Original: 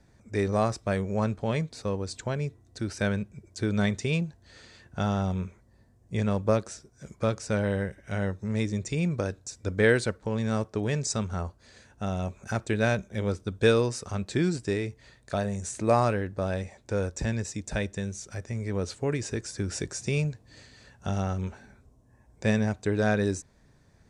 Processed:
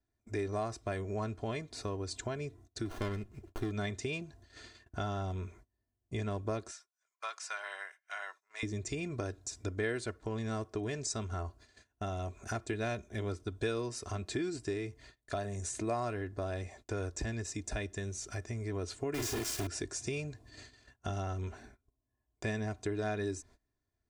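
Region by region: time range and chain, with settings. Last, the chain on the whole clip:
0:02.85–0:03.71: bass and treble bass 0 dB, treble +5 dB + windowed peak hold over 17 samples
0:06.71–0:08.63: high-pass filter 960 Hz 24 dB per octave + spectral tilt −1.5 dB per octave
0:19.14–0:19.67: variable-slope delta modulation 64 kbit/s + double-tracking delay 41 ms −5 dB + log-companded quantiser 2 bits
whole clip: noise gate −51 dBFS, range −25 dB; comb filter 2.9 ms, depth 68%; downward compressor 2.5 to 1, threshold −36 dBFS; level −1 dB

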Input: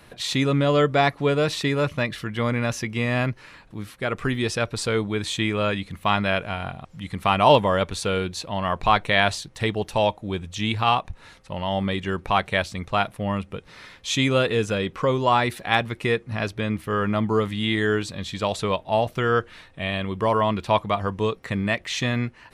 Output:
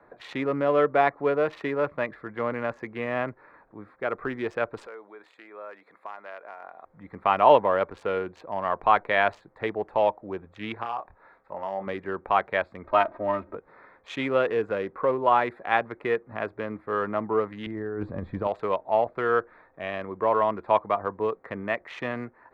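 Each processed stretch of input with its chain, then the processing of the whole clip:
0:04.86–0:06.85: high-shelf EQ 3,500 Hz +11.5 dB + downward compressor 4 to 1, threshold −33 dBFS + high-pass filter 480 Hz
0:10.74–0:11.87: low-shelf EQ 410 Hz −6.5 dB + downward compressor 8 to 1, threshold −24 dBFS + double-tracking delay 26 ms −6.5 dB
0:12.84–0:13.55: mu-law and A-law mismatch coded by mu + bad sample-rate conversion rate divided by 4×, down none, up filtered + comb filter 3.2 ms, depth 93%
0:17.66–0:18.47: RIAA equalisation playback + compressor whose output falls as the input rises −20 dBFS, ratio −0.5
whole clip: adaptive Wiener filter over 15 samples; three-way crossover with the lows and the highs turned down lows −17 dB, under 310 Hz, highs −23 dB, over 2,300 Hz

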